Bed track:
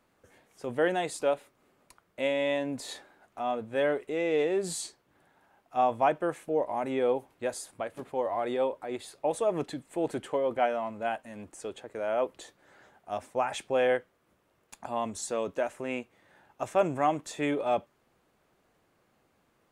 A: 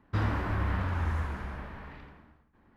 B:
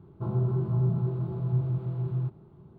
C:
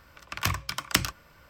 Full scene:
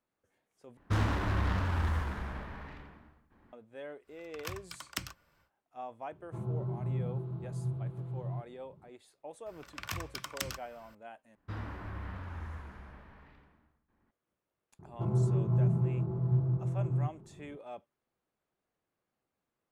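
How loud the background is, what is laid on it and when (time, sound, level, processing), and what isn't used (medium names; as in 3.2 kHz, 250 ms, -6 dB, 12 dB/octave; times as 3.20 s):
bed track -17.5 dB
0.77 s: replace with A -0.5 dB + tracing distortion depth 0.13 ms
4.02 s: add C -14 dB, fades 0.10 s
6.12 s: add B -8.5 dB
9.46 s: add C -5 dB + compression 2:1, threshold -32 dBFS
11.35 s: replace with A -11.5 dB
14.79 s: add B -1.5 dB + local Wiener filter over 15 samples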